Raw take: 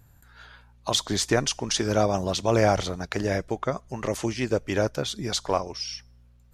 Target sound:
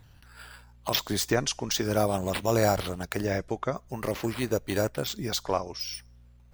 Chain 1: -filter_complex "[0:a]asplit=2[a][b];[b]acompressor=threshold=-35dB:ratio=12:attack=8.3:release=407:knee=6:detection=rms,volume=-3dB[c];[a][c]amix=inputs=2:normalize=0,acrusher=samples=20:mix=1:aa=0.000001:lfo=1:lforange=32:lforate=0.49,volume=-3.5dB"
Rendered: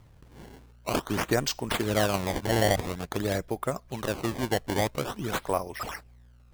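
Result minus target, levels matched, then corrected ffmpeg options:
decimation with a swept rate: distortion +11 dB
-filter_complex "[0:a]asplit=2[a][b];[b]acompressor=threshold=-35dB:ratio=12:attack=8.3:release=407:knee=6:detection=rms,volume=-3dB[c];[a][c]amix=inputs=2:normalize=0,acrusher=samples=4:mix=1:aa=0.000001:lfo=1:lforange=6.4:lforate=0.49,volume=-3.5dB"

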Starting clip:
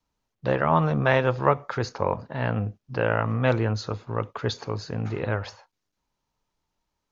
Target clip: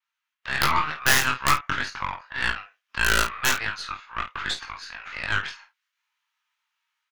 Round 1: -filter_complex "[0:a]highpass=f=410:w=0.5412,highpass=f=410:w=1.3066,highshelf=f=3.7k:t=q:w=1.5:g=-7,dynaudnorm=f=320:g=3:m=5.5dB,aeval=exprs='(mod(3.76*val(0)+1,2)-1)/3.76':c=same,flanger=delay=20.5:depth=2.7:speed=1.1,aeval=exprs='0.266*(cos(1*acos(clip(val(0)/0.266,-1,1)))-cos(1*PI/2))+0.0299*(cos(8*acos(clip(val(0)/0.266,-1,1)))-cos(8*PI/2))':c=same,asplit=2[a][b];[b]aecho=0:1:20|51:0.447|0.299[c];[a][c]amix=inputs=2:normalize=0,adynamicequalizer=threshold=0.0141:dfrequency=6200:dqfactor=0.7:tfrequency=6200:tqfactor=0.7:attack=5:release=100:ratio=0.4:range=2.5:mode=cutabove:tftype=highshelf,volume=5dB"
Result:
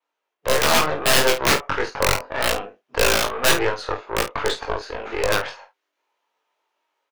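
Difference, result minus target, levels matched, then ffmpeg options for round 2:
500 Hz band +14.0 dB
-filter_complex "[0:a]highpass=f=1.3k:w=0.5412,highpass=f=1.3k:w=1.3066,highshelf=f=3.7k:t=q:w=1.5:g=-7,dynaudnorm=f=320:g=3:m=5.5dB,aeval=exprs='(mod(3.76*val(0)+1,2)-1)/3.76':c=same,flanger=delay=20.5:depth=2.7:speed=1.1,aeval=exprs='0.266*(cos(1*acos(clip(val(0)/0.266,-1,1)))-cos(1*PI/2))+0.0299*(cos(8*acos(clip(val(0)/0.266,-1,1)))-cos(8*PI/2))':c=same,asplit=2[a][b];[b]aecho=0:1:20|51:0.447|0.299[c];[a][c]amix=inputs=2:normalize=0,adynamicequalizer=threshold=0.0141:dfrequency=6200:dqfactor=0.7:tfrequency=6200:tqfactor=0.7:attack=5:release=100:ratio=0.4:range=2.5:mode=cutabove:tftype=highshelf,volume=5dB"

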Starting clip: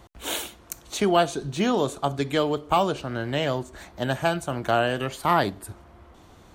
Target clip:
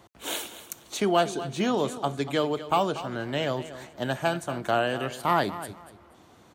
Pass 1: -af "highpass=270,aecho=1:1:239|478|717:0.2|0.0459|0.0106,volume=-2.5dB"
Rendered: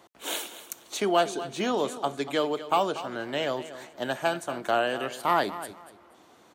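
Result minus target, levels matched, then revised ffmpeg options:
125 Hz band -8.5 dB
-af "highpass=120,aecho=1:1:239|478|717:0.2|0.0459|0.0106,volume=-2.5dB"

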